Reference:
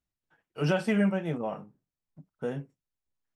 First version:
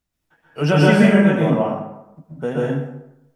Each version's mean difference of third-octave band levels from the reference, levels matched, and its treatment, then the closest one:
7.0 dB: dense smooth reverb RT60 0.85 s, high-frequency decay 0.65×, pre-delay 110 ms, DRR −5 dB
level +8 dB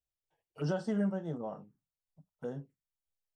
2.5 dB: phaser swept by the level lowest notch 230 Hz, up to 2,400 Hz, full sweep at −31 dBFS
level −6 dB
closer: second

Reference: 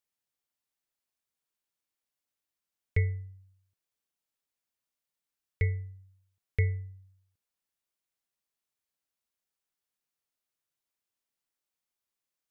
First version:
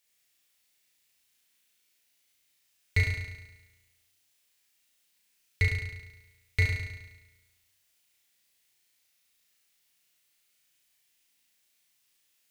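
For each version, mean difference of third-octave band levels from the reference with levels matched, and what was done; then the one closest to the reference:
12.5 dB: high shelf with overshoot 1,600 Hz +7.5 dB, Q 1.5
in parallel at −1 dB: downward compressor, threshold −38 dBFS, peak gain reduction 16 dB
on the sum: hard clipping −19 dBFS, distortion −16 dB
flutter between parallel walls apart 6 metres, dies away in 1.1 s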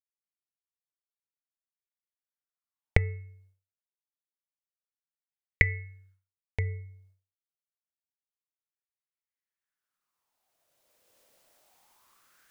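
2.5 dB: camcorder AGC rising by 6.6 dB per second
hum removal 436 Hz, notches 6
downward expander −54 dBFS
auto-filter bell 0.27 Hz 530–2,000 Hz +15 dB
level −4 dB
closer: second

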